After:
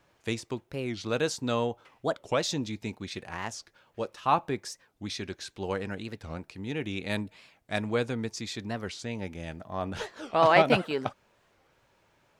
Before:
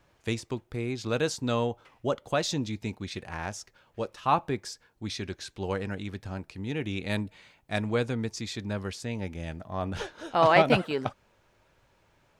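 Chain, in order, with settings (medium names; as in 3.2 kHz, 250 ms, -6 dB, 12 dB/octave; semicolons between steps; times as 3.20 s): bass shelf 92 Hz -9.5 dB; warped record 45 rpm, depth 250 cents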